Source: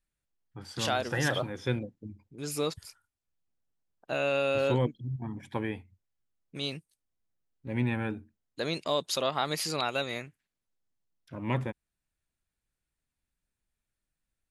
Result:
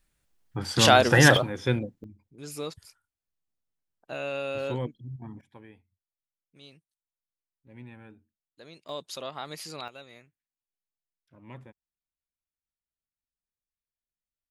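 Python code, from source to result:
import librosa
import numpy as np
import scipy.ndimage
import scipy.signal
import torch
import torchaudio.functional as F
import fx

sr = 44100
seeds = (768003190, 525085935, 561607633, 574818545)

y = fx.gain(x, sr, db=fx.steps((0.0, 12.0), (1.37, 4.5), (2.04, -4.5), (5.41, -17.0), (8.89, -8.0), (9.88, -15.5)))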